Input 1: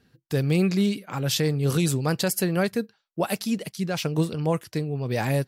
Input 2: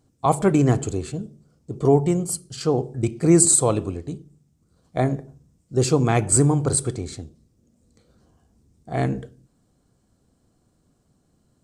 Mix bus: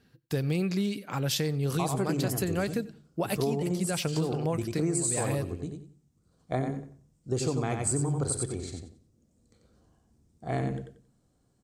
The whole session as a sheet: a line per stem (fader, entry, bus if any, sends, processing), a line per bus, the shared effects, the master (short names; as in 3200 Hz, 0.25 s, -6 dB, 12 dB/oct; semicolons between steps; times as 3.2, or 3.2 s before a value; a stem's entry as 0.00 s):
-1.5 dB, 0.00 s, no send, echo send -22.5 dB, dry
-6.0 dB, 1.55 s, no send, echo send -5.5 dB, dry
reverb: off
echo: feedback echo 91 ms, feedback 22%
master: compressor 6:1, threshold -25 dBFS, peak gain reduction 10 dB